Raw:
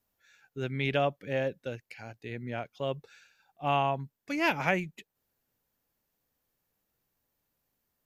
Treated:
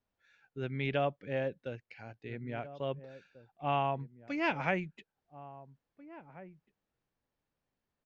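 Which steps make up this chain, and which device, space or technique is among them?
shout across a valley (air absorption 170 m; outdoor echo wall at 290 m, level -16 dB); gain -3 dB

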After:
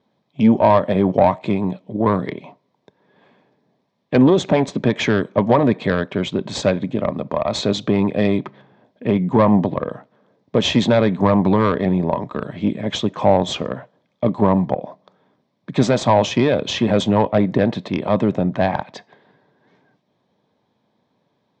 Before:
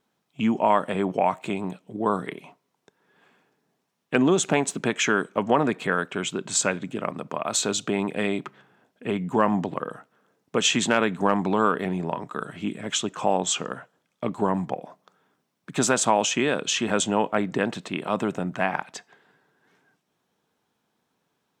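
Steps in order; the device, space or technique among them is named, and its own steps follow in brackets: guitar amplifier (tube stage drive 15 dB, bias 0.5; tone controls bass +10 dB, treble +12 dB; speaker cabinet 100–3600 Hz, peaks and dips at 160 Hz -5 dB, 580 Hz +8 dB, 980 Hz +3 dB, 1400 Hz -9 dB, 2800 Hz -9 dB); gain +7 dB

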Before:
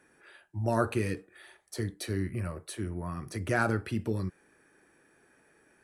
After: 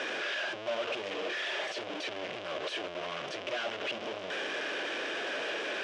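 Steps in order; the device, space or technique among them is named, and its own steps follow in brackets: home computer beeper (infinite clipping; speaker cabinet 530–4500 Hz, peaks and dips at 600 Hz +6 dB, 880 Hz -8 dB, 1300 Hz -5 dB, 1900 Hz -5 dB, 3000 Hz +4 dB, 4300 Hz -8 dB); gain +3.5 dB

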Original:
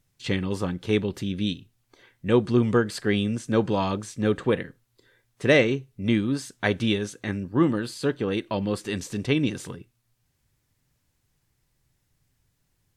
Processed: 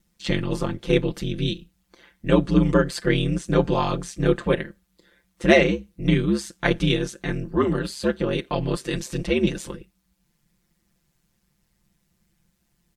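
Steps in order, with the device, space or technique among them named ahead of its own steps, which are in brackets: ring-modulated robot voice (ring modulator 70 Hz; comb 5.8 ms); gain +4 dB

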